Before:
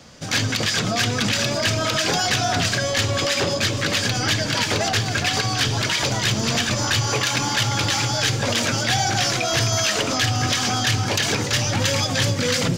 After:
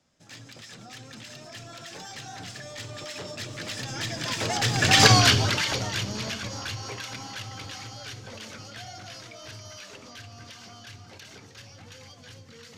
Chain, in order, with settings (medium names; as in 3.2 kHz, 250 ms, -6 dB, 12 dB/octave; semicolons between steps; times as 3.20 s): Doppler pass-by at 5.09 s, 22 m/s, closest 2.9 m; trim +7.5 dB